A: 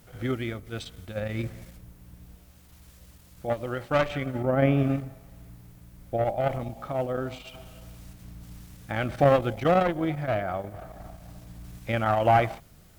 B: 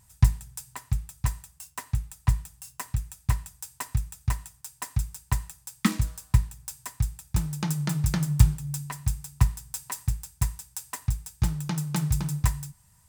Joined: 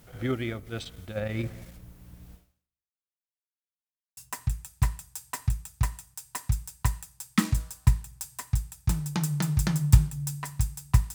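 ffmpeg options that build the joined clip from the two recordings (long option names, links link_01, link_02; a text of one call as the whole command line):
ffmpeg -i cue0.wav -i cue1.wav -filter_complex "[0:a]apad=whole_dur=11.14,atrim=end=11.14,asplit=2[link_01][link_02];[link_01]atrim=end=3.23,asetpts=PTS-STARTPTS,afade=type=out:start_time=2.34:duration=0.89:curve=exp[link_03];[link_02]atrim=start=3.23:end=4.17,asetpts=PTS-STARTPTS,volume=0[link_04];[1:a]atrim=start=2.64:end=9.61,asetpts=PTS-STARTPTS,afade=type=in:duration=0.004:curve=hsin[link_05];[link_03][link_04][link_05]concat=n=3:v=0:a=1" out.wav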